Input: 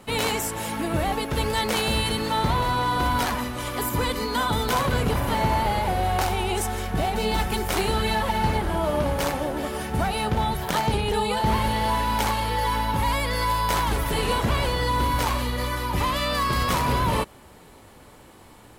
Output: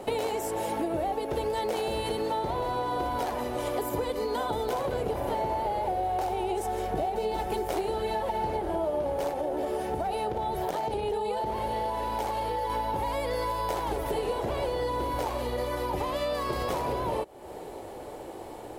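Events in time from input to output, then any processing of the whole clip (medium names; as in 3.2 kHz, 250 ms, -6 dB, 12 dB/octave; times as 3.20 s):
9.31–12.70 s: compression, threshold -24 dBFS
whole clip: high-order bell 520 Hz +12.5 dB; compression, threshold -28 dBFS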